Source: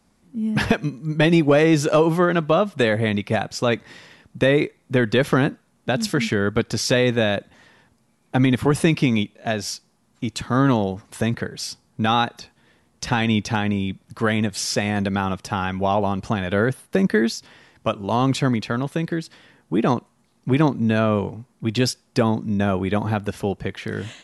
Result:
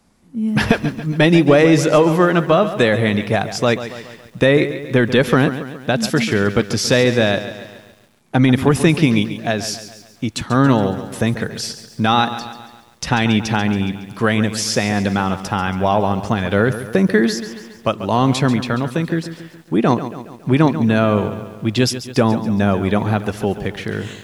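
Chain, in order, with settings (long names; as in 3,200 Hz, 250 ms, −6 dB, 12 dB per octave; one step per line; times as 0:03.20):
feedback echo at a low word length 139 ms, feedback 55%, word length 8 bits, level −12 dB
level +4 dB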